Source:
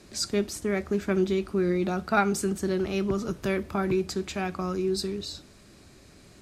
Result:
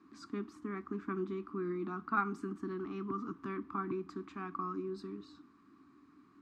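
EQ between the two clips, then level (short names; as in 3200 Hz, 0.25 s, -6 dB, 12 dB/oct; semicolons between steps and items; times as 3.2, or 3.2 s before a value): double band-pass 570 Hz, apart 2 oct; +2.0 dB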